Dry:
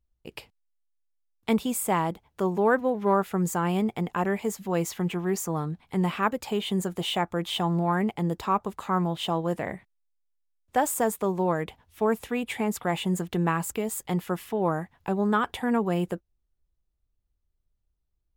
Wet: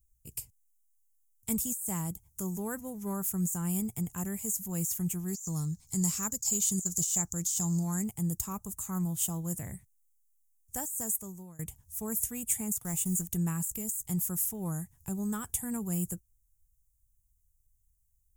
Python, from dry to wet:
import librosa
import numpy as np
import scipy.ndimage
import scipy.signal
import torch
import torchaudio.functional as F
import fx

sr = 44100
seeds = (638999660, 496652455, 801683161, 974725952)

y = fx.band_shelf(x, sr, hz=5400.0, db=13.5, octaves=1.1, at=(5.28, 8.04))
y = fx.law_mismatch(y, sr, coded='A', at=(12.78, 13.28))
y = fx.edit(y, sr, fx.fade_out_to(start_s=10.81, length_s=0.78, floor_db=-22.5), tone=tone)
y = fx.curve_eq(y, sr, hz=(120.0, 250.0, 540.0, 4000.0, 6800.0, 13000.0), db=(0, -15, -24, -18, 12, 14))
y = fx.over_compress(y, sr, threshold_db=-30.0, ratio=-1.0)